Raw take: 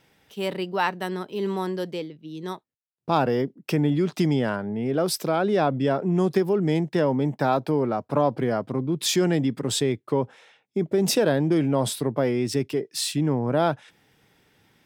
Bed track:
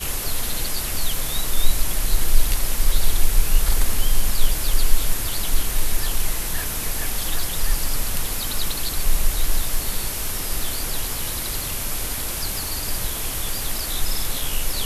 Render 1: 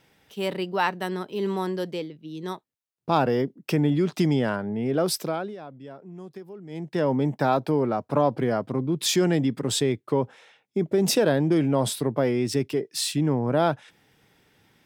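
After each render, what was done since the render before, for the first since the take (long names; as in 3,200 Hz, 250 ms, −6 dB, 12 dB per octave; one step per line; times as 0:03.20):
0:05.13–0:07.12: duck −19 dB, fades 0.43 s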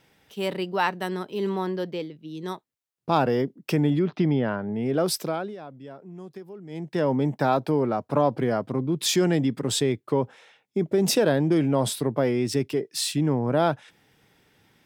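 0:01.49–0:02.00: parametric band 9,100 Hz −11.5 dB 1.1 octaves
0:03.99–0:04.69: high-frequency loss of the air 280 metres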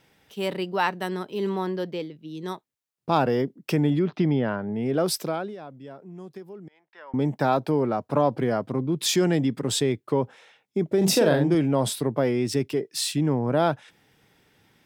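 0:06.68–0:07.14: four-pole ladder band-pass 1,600 Hz, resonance 25%
0:10.97–0:11.55: double-tracking delay 42 ms −4.5 dB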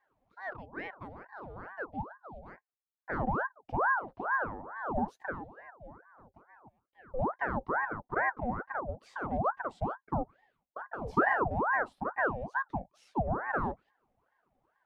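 pair of resonant band-passes 380 Hz, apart 0.81 octaves
ring modulator whose carrier an LFO sweeps 800 Hz, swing 70%, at 2.3 Hz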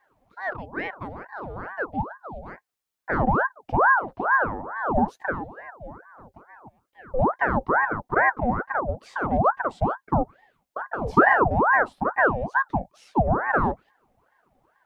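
level +10 dB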